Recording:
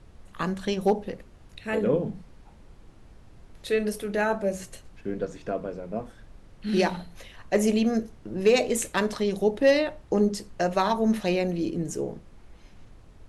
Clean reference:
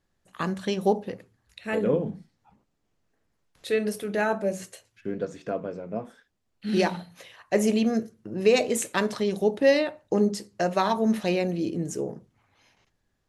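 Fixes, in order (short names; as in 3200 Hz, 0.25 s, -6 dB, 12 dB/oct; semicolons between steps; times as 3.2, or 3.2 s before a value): clip repair -11 dBFS; noise print and reduce 23 dB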